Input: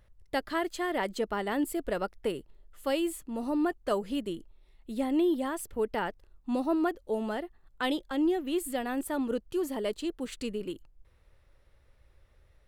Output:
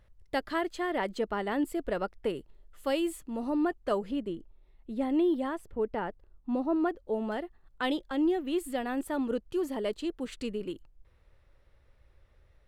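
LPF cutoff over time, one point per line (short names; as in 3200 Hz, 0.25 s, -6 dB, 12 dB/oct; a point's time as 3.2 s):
LPF 6 dB/oct
6800 Hz
from 0.61 s 3700 Hz
from 2.37 s 7700 Hz
from 3.36 s 3600 Hz
from 4.11 s 1400 Hz
from 5.01 s 2800 Hz
from 5.56 s 1100 Hz
from 6.76 s 1900 Hz
from 7.32 s 4800 Hz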